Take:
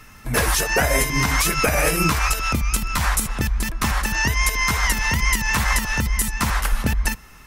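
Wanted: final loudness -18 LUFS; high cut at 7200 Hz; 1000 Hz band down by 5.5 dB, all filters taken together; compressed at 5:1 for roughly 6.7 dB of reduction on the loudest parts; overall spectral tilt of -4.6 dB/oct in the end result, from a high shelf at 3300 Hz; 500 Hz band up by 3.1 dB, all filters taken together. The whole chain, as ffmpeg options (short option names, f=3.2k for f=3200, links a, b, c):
-af "lowpass=7.2k,equalizer=f=500:t=o:g=6,equalizer=f=1k:t=o:g=-8,highshelf=f=3.3k:g=-6.5,acompressor=threshold=-22dB:ratio=5,volume=9.5dB"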